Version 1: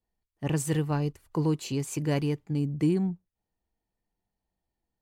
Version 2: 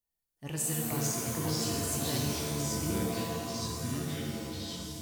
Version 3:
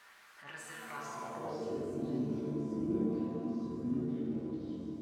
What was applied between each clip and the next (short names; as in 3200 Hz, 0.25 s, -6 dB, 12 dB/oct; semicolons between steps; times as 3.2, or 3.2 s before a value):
pre-emphasis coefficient 0.8; echoes that change speed 0.285 s, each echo -4 st, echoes 3; shimmer reverb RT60 1.8 s, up +7 st, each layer -2 dB, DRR 0 dB; gain +1.5 dB
zero-crossing step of -36.5 dBFS; band-pass sweep 1500 Hz -> 290 Hz, 0.89–2.11; reverb RT60 0.50 s, pre-delay 5 ms, DRR 2.5 dB